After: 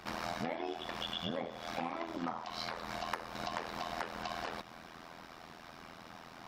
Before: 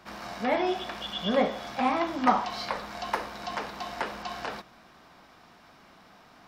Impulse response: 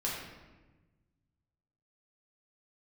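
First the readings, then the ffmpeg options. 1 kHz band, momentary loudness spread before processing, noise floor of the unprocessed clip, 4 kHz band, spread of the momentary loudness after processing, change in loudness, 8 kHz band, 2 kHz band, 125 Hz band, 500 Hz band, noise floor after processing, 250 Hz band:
-10.5 dB, 11 LU, -56 dBFS, -5.5 dB, 13 LU, -10.0 dB, -4.5 dB, -7.5 dB, -4.0 dB, -11.0 dB, -53 dBFS, -11.0 dB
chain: -af "acompressor=threshold=0.0112:ratio=12,tremolo=f=83:d=0.889,volume=2.24"

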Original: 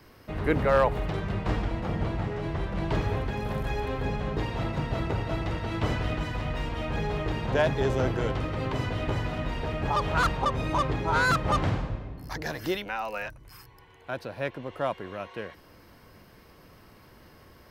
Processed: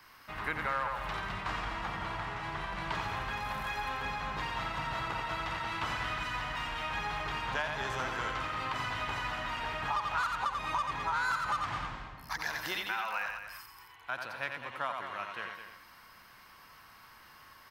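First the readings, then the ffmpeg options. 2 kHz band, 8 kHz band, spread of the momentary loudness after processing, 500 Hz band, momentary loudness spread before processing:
-1.0 dB, -2.5 dB, 19 LU, -14.5 dB, 11 LU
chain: -filter_complex "[0:a]lowshelf=f=710:t=q:w=1.5:g=-13,asplit=2[s0][s1];[s1]aecho=0:1:88:0.501[s2];[s0][s2]amix=inputs=2:normalize=0,acompressor=threshold=0.0316:ratio=6,equalizer=f=86:w=1.4:g=-3,asplit=2[s3][s4];[s4]aecho=0:1:211:0.335[s5];[s3][s5]amix=inputs=2:normalize=0"

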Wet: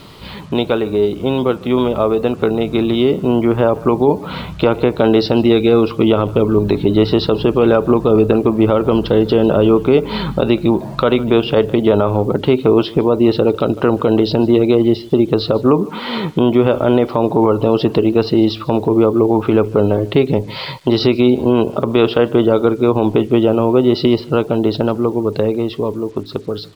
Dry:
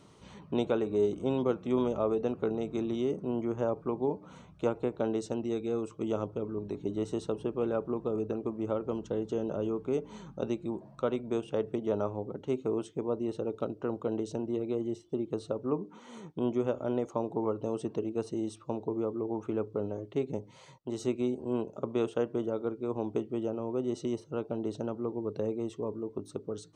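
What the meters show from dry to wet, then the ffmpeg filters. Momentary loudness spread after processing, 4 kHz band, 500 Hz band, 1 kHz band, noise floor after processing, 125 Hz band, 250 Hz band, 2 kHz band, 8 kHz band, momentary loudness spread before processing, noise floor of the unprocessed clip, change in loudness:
5 LU, +26.5 dB, +18.0 dB, +19.5 dB, -31 dBFS, +21.0 dB, +19.0 dB, +23.0 dB, no reading, 6 LU, -55 dBFS, +18.5 dB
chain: -filter_complex "[0:a]asplit=2[s0][s1];[s1]acompressor=threshold=0.0112:ratio=5,volume=1.19[s2];[s0][s2]amix=inputs=2:normalize=0,lowshelf=f=62:g=12,crystalizer=i=7.5:c=0,aresample=11025,aresample=44100,dynaudnorm=f=740:g=9:m=3.16,aemphasis=mode=reproduction:type=50kf,asplit=2[s3][s4];[s4]aecho=0:1:151:0.0708[s5];[s3][s5]amix=inputs=2:normalize=0,acrusher=bits=8:mix=0:aa=0.5,alimiter=level_in=3.16:limit=0.891:release=50:level=0:latency=1,volume=0.891"

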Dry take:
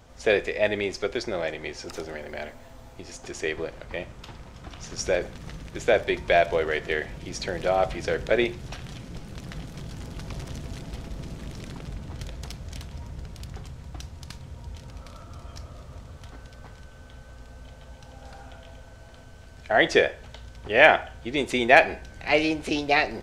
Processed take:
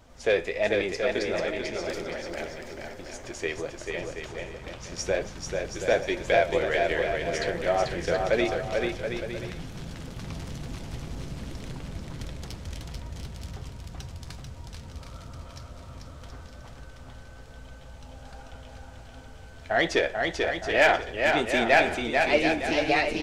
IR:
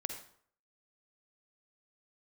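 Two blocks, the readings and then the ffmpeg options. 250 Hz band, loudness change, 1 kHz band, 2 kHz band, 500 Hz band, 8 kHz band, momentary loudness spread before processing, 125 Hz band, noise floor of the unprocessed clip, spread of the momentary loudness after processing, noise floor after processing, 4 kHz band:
-0.5 dB, -2.5 dB, -1.5 dB, -2.0 dB, -1.0 dB, 0.0 dB, 22 LU, -0.5 dB, -47 dBFS, 21 LU, -46 dBFS, -1.0 dB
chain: -filter_complex "[0:a]acontrast=82,flanger=delay=3.1:depth=9:regen=54:speed=1.3:shape=sinusoidal,asplit=2[s0][s1];[s1]aecho=0:1:440|726|911.9|1033|1111:0.631|0.398|0.251|0.158|0.1[s2];[s0][s2]amix=inputs=2:normalize=0,volume=0.562"

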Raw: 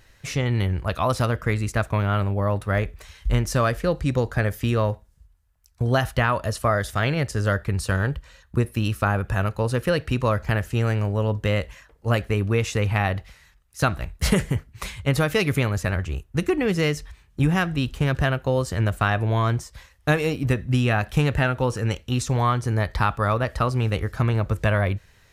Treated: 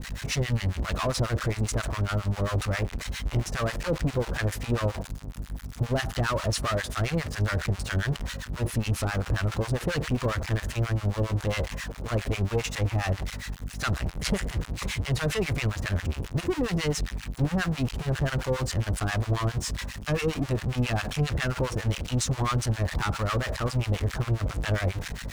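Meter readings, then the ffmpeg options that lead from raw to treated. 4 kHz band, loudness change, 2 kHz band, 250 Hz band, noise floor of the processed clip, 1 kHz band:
-1.0 dB, -5.0 dB, -5.5 dB, -5.5 dB, -41 dBFS, -7.5 dB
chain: -filter_complex "[0:a]aeval=exprs='val(0)+0.5*0.0596*sgn(val(0))':c=same,agate=range=0.0224:threshold=0.0447:ratio=3:detection=peak,asoftclip=type=tanh:threshold=0.1,aeval=exprs='val(0)+0.0224*(sin(2*PI*50*n/s)+sin(2*PI*2*50*n/s)/2+sin(2*PI*3*50*n/s)/3+sin(2*PI*4*50*n/s)/4+sin(2*PI*5*50*n/s)/5)':c=same,acrossover=split=870[s0][s1];[s0]aeval=exprs='val(0)*(1-1/2+1/2*cos(2*PI*7.4*n/s))':c=same[s2];[s1]aeval=exprs='val(0)*(1-1/2-1/2*cos(2*PI*7.4*n/s))':c=same[s3];[s2][s3]amix=inputs=2:normalize=0,acrossover=split=9800[s4][s5];[s5]acompressor=threshold=0.00224:ratio=4:attack=1:release=60[s6];[s4][s6]amix=inputs=2:normalize=0,volume=1.12"

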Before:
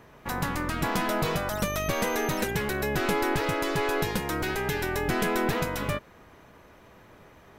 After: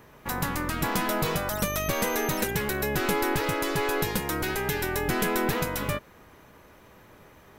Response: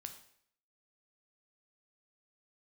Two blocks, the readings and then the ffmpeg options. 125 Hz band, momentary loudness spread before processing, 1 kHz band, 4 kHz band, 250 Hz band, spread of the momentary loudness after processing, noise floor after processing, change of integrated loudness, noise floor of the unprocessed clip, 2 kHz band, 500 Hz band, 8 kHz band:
0.0 dB, 4 LU, 0.0 dB, +1.0 dB, 0.0 dB, 3 LU, -54 dBFS, +0.5 dB, -54 dBFS, +0.5 dB, 0.0 dB, +3.5 dB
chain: -af "highshelf=f=9500:g=9.5,bandreject=f=680:w=20"

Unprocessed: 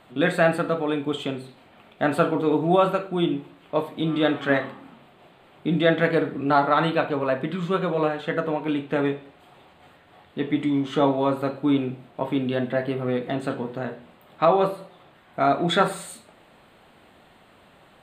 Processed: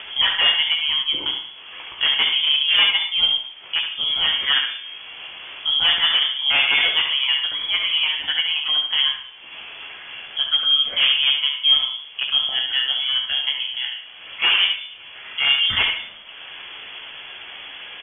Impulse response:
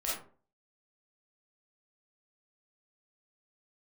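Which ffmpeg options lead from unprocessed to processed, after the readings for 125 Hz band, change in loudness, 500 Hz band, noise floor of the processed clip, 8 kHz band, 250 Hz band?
under -15 dB, +6.0 dB, -21.0 dB, -41 dBFS, no reading, under -20 dB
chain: -filter_complex "[0:a]acompressor=mode=upward:threshold=0.0447:ratio=2.5,aeval=exprs='0.2*(abs(mod(val(0)/0.2+3,4)-2)-1)':c=same,asplit=2[s0][s1];[1:a]atrim=start_sample=2205,adelay=55[s2];[s1][s2]afir=irnorm=-1:irlink=0,volume=0.168[s3];[s0][s3]amix=inputs=2:normalize=0,lowpass=f=3000:t=q:w=0.5098,lowpass=f=3000:t=q:w=0.6013,lowpass=f=3000:t=q:w=0.9,lowpass=f=3000:t=q:w=2.563,afreqshift=-3500,aecho=1:1:14|71:0.398|0.473,volume=1.26"

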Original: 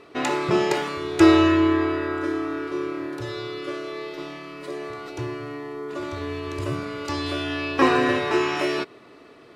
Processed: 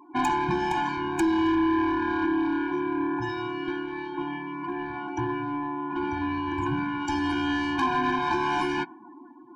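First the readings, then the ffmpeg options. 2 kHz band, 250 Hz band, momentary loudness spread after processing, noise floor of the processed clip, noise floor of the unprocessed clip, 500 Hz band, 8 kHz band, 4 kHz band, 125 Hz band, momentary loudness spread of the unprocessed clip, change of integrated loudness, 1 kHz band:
-2.5 dB, -3.0 dB, 9 LU, -48 dBFS, -49 dBFS, -7.5 dB, no reading, -6.0 dB, -4.5 dB, 16 LU, -3.5 dB, +1.5 dB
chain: -af "equalizer=f=100:t=o:w=0.67:g=-11,equalizer=f=1000:t=o:w=0.67:g=7,equalizer=f=4000:t=o:w=0.67:g=-9,afftdn=nr=32:nf=-44,acompressor=threshold=0.0794:ratio=8,asoftclip=type=tanh:threshold=0.0562,afftfilt=real='re*eq(mod(floor(b*sr/1024/360),2),0)':imag='im*eq(mod(floor(b*sr/1024/360),2),0)':win_size=1024:overlap=0.75,volume=2.24"

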